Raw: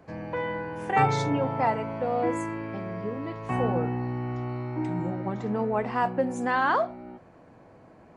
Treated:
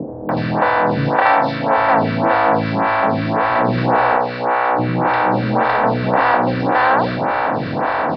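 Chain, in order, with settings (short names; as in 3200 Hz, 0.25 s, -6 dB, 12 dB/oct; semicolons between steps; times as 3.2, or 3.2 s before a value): per-bin compression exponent 0.2; 4.16–4.79 tone controls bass -14 dB, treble -10 dB; downsampling 11025 Hz; 1.09–1.78 low shelf 180 Hz -11.5 dB; bands offset in time lows, highs 0.29 s, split 420 Hz; photocell phaser 1.8 Hz; gain +5.5 dB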